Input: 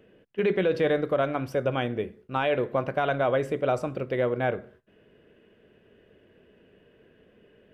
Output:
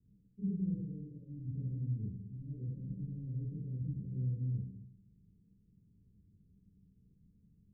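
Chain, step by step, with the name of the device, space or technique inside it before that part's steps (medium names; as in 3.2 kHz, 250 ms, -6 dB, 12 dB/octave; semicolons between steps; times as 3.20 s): 0.76–1.33 s: tilt EQ +2.5 dB/octave; club heard from the street (peak limiter -17 dBFS, peak gain reduction 4 dB; low-pass 180 Hz 24 dB/octave; reverberation RT60 0.65 s, pre-delay 19 ms, DRR -6.5 dB); elliptic low-pass 510 Hz, stop band 40 dB; trim -8 dB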